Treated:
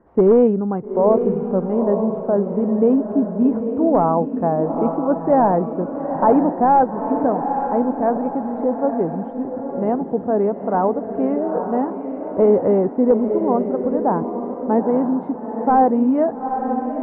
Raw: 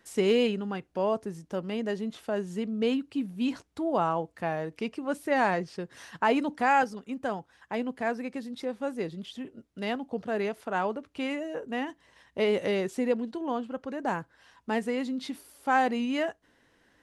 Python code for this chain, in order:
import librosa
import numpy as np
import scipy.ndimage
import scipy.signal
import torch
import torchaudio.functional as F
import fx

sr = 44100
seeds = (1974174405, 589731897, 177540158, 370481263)

p1 = (np.mod(10.0 ** (17.0 / 20.0) * x + 1.0, 2.0) - 1.0) / 10.0 ** (17.0 / 20.0)
p2 = x + (p1 * 10.0 ** (-8.0 / 20.0))
p3 = scipy.signal.sosfilt(scipy.signal.butter(4, 1000.0, 'lowpass', fs=sr, output='sos'), p2)
p4 = fx.echo_diffused(p3, sr, ms=880, feedback_pct=41, wet_db=-6.5)
y = p4 * 10.0 ** (9.0 / 20.0)